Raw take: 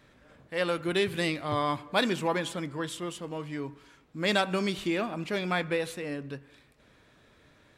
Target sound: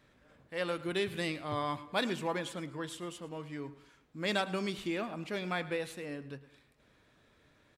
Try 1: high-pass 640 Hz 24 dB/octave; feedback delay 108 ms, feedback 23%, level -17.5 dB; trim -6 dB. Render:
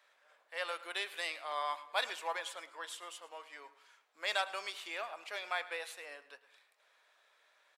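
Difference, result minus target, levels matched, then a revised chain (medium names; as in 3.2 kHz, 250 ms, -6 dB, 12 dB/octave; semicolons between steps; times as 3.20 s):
500 Hz band -5.0 dB
feedback delay 108 ms, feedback 23%, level -17.5 dB; trim -6 dB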